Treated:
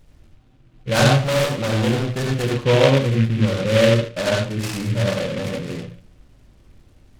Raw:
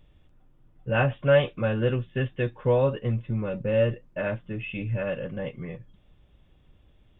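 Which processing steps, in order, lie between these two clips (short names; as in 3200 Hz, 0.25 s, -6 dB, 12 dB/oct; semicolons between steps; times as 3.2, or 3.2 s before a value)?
1.2–2.44 hard clip -25 dBFS, distortion -8 dB; reverb RT60 0.40 s, pre-delay 62 ms, DRR -0.5 dB; noise-modulated delay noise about 2200 Hz, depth 0.096 ms; gain +5 dB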